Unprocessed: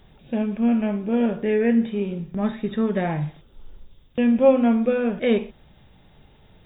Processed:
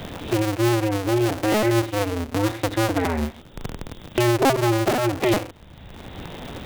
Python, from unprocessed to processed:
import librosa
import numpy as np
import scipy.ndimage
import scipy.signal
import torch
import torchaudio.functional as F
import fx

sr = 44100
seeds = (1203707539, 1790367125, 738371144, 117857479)

y = fx.cycle_switch(x, sr, every=2, mode='inverted')
y = fx.band_squash(y, sr, depth_pct=70)